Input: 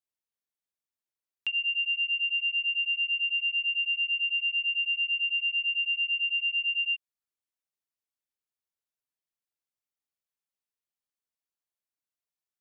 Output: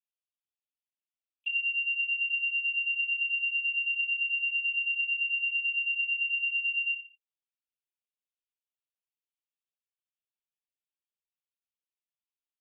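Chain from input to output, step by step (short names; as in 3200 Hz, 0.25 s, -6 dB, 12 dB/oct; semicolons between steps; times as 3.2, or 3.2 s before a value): elliptic high-pass 2500 Hz; tilt -2.5 dB/oct; 1.78–2.45 crackle 46/s -50 dBFS; on a send: feedback echo 67 ms, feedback 30%, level -10 dB; on the sum: LPC vocoder at 8 kHz pitch kept; gain +2 dB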